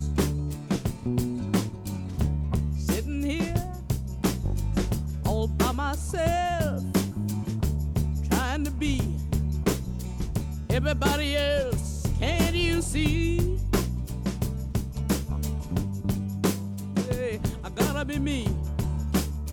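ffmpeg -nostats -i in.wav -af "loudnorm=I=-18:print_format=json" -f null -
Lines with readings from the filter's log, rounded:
"input_i" : "-28.0",
"input_tp" : "-10.0",
"input_lra" : "2.5",
"input_thresh" : "-38.0",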